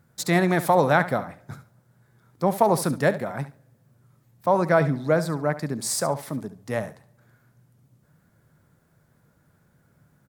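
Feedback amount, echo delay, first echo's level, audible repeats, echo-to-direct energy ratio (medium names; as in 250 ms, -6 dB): 19%, 70 ms, -14.0 dB, 2, -14.0 dB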